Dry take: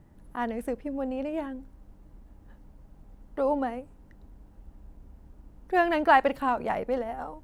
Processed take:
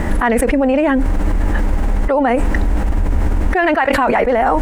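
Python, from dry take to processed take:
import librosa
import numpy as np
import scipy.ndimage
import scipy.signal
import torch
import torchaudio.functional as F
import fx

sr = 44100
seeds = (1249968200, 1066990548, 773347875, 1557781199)

y = fx.graphic_eq(x, sr, hz=(125, 2000, 8000), db=(-12, 8, 8))
y = fx.stretch_vocoder(y, sr, factor=0.62)
y = fx.high_shelf(y, sr, hz=4600.0, db=-10.0)
y = fx.env_flatten(y, sr, amount_pct=100)
y = y * librosa.db_to_amplitude(1.5)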